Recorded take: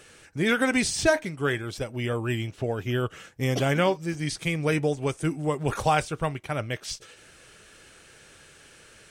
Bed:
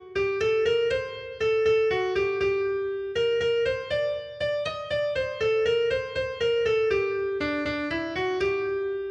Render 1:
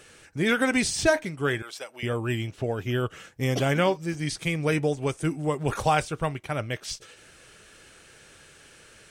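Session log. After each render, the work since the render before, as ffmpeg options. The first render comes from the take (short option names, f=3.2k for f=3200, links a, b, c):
-filter_complex "[0:a]asettb=1/sr,asplit=3[a][b][c];[a]atrim=end=1.624[d];[b]atrim=start=1.62:end=2.03,asetpts=PTS-STARTPTS,afade=t=in:d=0.004:c=qsin,afade=t=out:st=0.406:d=0.004:c=qsin,highpass=730[e];[c]atrim=start=2.026[f];[d][e]acrossfade=d=0.004:c1=hsin:c2=qsin[g];[g][f]acrossfade=d=0.004:c1=qsin:c2=hsin"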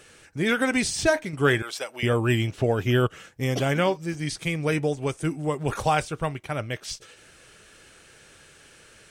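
-filter_complex "[0:a]asettb=1/sr,asplit=3[a][b][c];[a]atrim=end=1.334[d];[b]atrim=start=1.33:end=3.07,asetpts=PTS-STARTPTS,afade=t=in:d=0.004:c=qsin,afade=t=out:st=1.736:d=0.004:c=qsin,acontrast=43[e];[c]atrim=start=3.066[f];[d][e]acrossfade=d=0.004:c1=hsin:c2=qsin[g];[g][f]acrossfade=d=0.004:c1=qsin:c2=hsin"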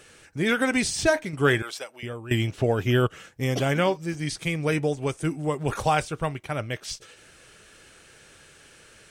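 -filter_complex "[0:a]asplit=2[a][b];[a]atrim=end=2.31,asetpts=PTS-STARTPTS,afade=t=out:st=1.66:d=0.65:c=qua:silence=0.16788[c];[b]atrim=start=2.31,asetpts=PTS-STARTPTS,afade=t=in:d=0.004:c=hsin:silence=0.16788[d];[c][d]concat=n=2:v=0:a=1"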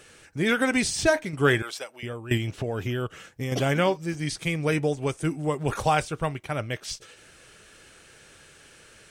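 -filter_complex "[0:a]asettb=1/sr,asplit=3[a][b][c];[a]atrim=end=2.374[d];[b]atrim=start=2.37:end=3.52,asetpts=PTS-STARTPTS,afade=t=in:d=0.004:c=qsin,afade=t=out:st=1.146:d=0.004:c=qsin,acompressor=threshold=-25dB:ratio=6:attack=3.2:release=140:knee=1:detection=peak[e];[c]atrim=start=3.516[f];[d][e]acrossfade=d=0.004:c1=hsin:c2=qsin[g];[g][f]acrossfade=d=0.004:c1=qsin:c2=hsin"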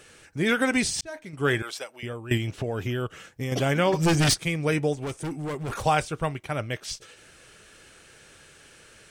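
-filter_complex "[0:a]asplit=3[a][b][c];[a]afade=t=out:st=3.92:d=0.02[d];[b]aeval=exprs='0.158*sin(PI/2*3.55*val(0)/0.158)':c=same,afade=t=in:st=3.92:d=0.02,afade=t=out:st=4.33:d=0.02[e];[c]afade=t=in:st=4.33:d=0.02[f];[d][e][f]amix=inputs=3:normalize=0,asettb=1/sr,asplit=3[g][h][i];[g]atrim=end=4.934[j];[h]atrim=start=4.93:end=5.83,asetpts=PTS-STARTPTS,afade=t=in:d=0.004:c=qsin,afade=t=out:st=0.896:d=0.004:c=qsin,asoftclip=type=hard:threshold=-28dB[k];[i]atrim=start=5.826[l];[j][k]acrossfade=d=0.004:c1=hsin:c2=qsin[m];[m][l]acrossfade=d=0.004:c1=qsin:c2=hsin,asplit=2[n][o];[n]atrim=end=1.01,asetpts=PTS-STARTPTS,afade=t=out:st=1.006:d=0.004:c=hsin[p];[o]atrim=start=1.01,asetpts=PTS-STARTPTS,afade=t=in:d=0.68[q];[p][q]concat=n=2:v=0:a=1"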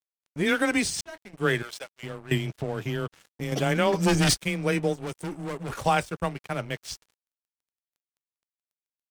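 -af "afreqshift=15,aeval=exprs='sgn(val(0))*max(abs(val(0))-0.00841,0)':c=same"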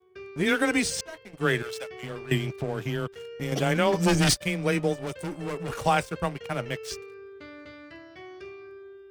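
-filter_complex "[1:a]volume=-17dB[a];[0:a][a]amix=inputs=2:normalize=0"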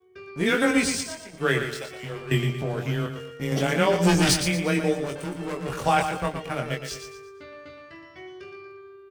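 -filter_complex "[0:a]asplit=2[a][b];[b]adelay=22,volume=-4dB[c];[a][c]amix=inputs=2:normalize=0,asplit=2[d][e];[e]aecho=0:1:117|234|351|468:0.398|0.147|0.0545|0.0202[f];[d][f]amix=inputs=2:normalize=0"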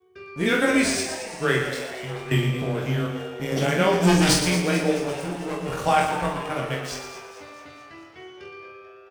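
-filter_complex "[0:a]asplit=2[a][b];[b]adelay=45,volume=-5dB[c];[a][c]amix=inputs=2:normalize=0,asplit=7[d][e][f][g][h][i][j];[e]adelay=219,afreqshift=120,volume=-12.5dB[k];[f]adelay=438,afreqshift=240,volume=-17.4dB[l];[g]adelay=657,afreqshift=360,volume=-22.3dB[m];[h]adelay=876,afreqshift=480,volume=-27.1dB[n];[i]adelay=1095,afreqshift=600,volume=-32dB[o];[j]adelay=1314,afreqshift=720,volume=-36.9dB[p];[d][k][l][m][n][o][p]amix=inputs=7:normalize=0"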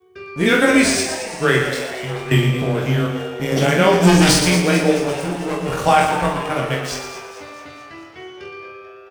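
-af "volume=6.5dB,alimiter=limit=-2dB:level=0:latency=1"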